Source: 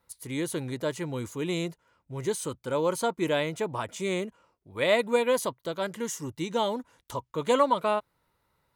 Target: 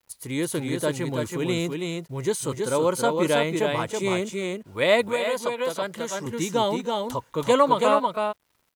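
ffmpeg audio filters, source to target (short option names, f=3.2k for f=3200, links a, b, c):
-filter_complex "[0:a]acrusher=bits=10:mix=0:aa=0.000001,asplit=2[a][b];[b]aecho=0:1:302|327:0.1|0.631[c];[a][c]amix=inputs=2:normalize=0,asettb=1/sr,asplit=3[d][e][f];[d]atrim=end=5.084[g];[e]atrim=start=5.08:end=6.26,asetpts=PTS-STARTPTS,afade=t=in:d=0.004:c=qsin,afade=t=out:st=1.176:d=0.004:c=qsin,acrossover=split=470|6000[h][i][j];[h]acompressor=threshold=-39dB:ratio=4[k];[i]acompressor=threshold=-28dB:ratio=4[l];[j]acompressor=threshold=-48dB:ratio=4[m];[k][l][m]amix=inputs=3:normalize=0[n];[f]atrim=start=6.256[o];[g][n]acrossfade=d=0.004:c1=hsin:c2=qsin[p];[p][o]acrossfade=d=0.004:c1=qsin:c2=hsin,volume=4dB"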